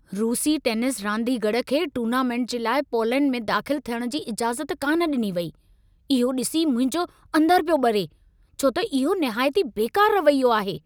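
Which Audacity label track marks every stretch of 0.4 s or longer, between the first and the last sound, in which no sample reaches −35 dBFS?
5.500000	6.100000	silence
8.060000	8.590000	silence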